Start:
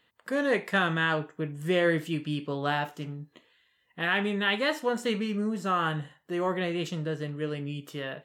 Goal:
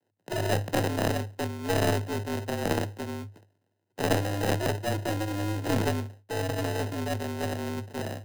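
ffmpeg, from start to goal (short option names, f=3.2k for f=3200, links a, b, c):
-filter_complex "[0:a]agate=range=-12dB:threshold=-57dB:ratio=16:detection=peak,aeval=exprs='max(val(0),0)':c=same,asplit=2[a][b];[b]acompressor=threshold=-37dB:ratio=6,volume=0.5dB[c];[a][c]amix=inputs=2:normalize=0,acrusher=samples=40:mix=1:aa=0.000001,afreqshift=100,aeval=exprs='0.266*(cos(1*acos(clip(val(0)/0.266,-1,1)))-cos(1*PI/2))+0.0335*(cos(4*acos(clip(val(0)/0.266,-1,1)))-cos(4*PI/2))':c=same"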